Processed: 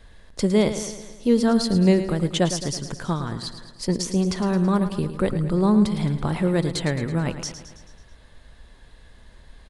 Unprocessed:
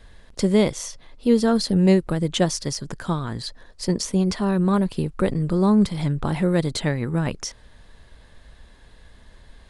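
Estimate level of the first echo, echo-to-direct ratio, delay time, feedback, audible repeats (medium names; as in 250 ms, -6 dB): -11.0 dB, -9.5 dB, 109 ms, 57%, 5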